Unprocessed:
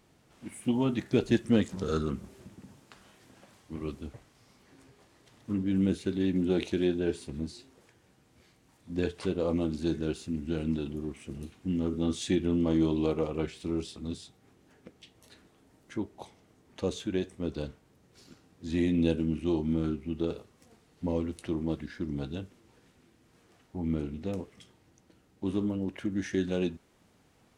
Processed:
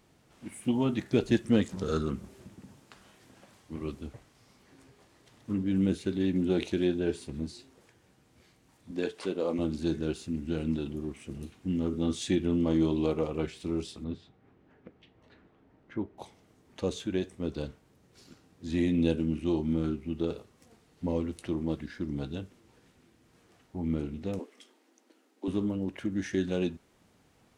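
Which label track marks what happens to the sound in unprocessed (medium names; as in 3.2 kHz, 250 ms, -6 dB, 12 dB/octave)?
8.910000	9.590000	high-pass 250 Hz
14.040000	16.180000	low-pass 2.2 kHz
24.390000	25.480000	steep high-pass 230 Hz 72 dB/octave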